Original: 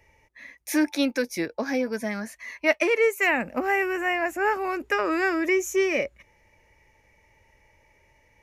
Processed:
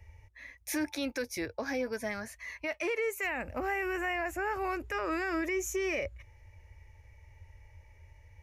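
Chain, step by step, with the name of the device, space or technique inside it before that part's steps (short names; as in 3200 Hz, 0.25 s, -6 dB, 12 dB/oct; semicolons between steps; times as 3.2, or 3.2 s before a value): car stereo with a boomy subwoofer (resonant low shelf 130 Hz +12 dB, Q 3; limiter -20.5 dBFS, peak gain reduction 11.5 dB); gain -4 dB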